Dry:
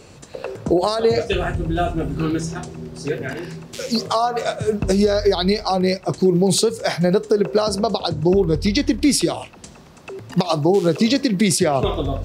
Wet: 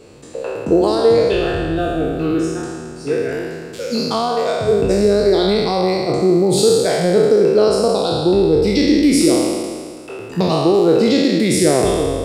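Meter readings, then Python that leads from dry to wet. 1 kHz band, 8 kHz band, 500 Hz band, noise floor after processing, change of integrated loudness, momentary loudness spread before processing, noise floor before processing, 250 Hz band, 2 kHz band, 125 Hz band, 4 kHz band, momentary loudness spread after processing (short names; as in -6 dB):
+1.5 dB, +1.5 dB, +5.5 dB, -33 dBFS, +4.0 dB, 14 LU, -44 dBFS, +3.5 dB, +2.0 dB, 0.0 dB, +1.5 dB, 13 LU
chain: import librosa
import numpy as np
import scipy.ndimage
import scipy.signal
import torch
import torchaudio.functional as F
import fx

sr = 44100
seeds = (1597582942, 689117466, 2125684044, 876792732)

y = fx.spec_trails(x, sr, decay_s=1.85)
y = fx.peak_eq(y, sr, hz=6100.0, db=-4.5, octaves=0.26)
y = fx.small_body(y, sr, hz=(320.0, 460.0), ring_ms=25, db=7)
y = y * librosa.db_to_amplitude(-4.5)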